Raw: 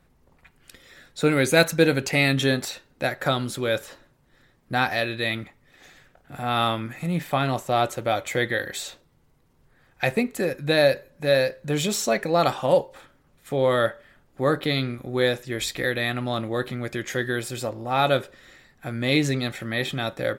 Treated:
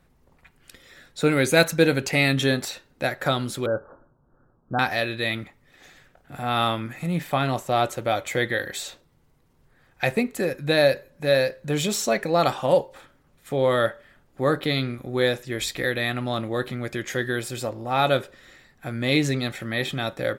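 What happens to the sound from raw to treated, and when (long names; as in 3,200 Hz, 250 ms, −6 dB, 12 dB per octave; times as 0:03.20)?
0:03.66–0:04.79: Butterworth low-pass 1,500 Hz 96 dB per octave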